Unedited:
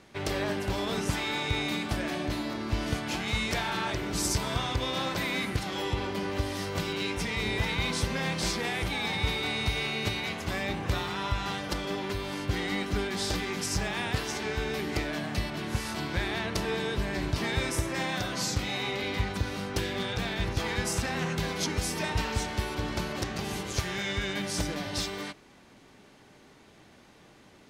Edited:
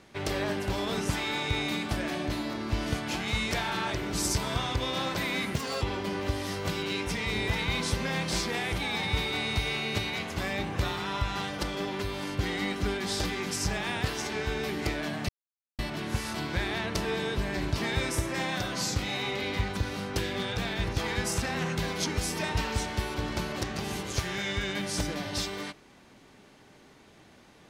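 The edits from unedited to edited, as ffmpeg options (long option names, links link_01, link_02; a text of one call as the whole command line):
ffmpeg -i in.wav -filter_complex "[0:a]asplit=4[link_01][link_02][link_03][link_04];[link_01]atrim=end=5.544[link_05];[link_02]atrim=start=5.54:end=5.92,asetpts=PTS-STARTPTS,asetrate=60417,aresample=44100,atrim=end_sample=12232,asetpts=PTS-STARTPTS[link_06];[link_03]atrim=start=5.916:end=15.39,asetpts=PTS-STARTPTS,afade=type=out:start_time=9.47:duration=0.004:curve=hsin,apad=pad_dur=0.5[link_07];[link_04]atrim=start=15.39,asetpts=PTS-STARTPTS,afade=type=in:duration=0.004:curve=hsin[link_08];[link_05][link_06]acrossfade=duration=0.004:curve1=hsin:curve2=hsin[link_09];[link_07][link_08]concat=n=2:v=0:a=1[link_10];[link_09][link_10]acrossfade=duration=0.004:curve1=hsin:curve2=hsin" out.wav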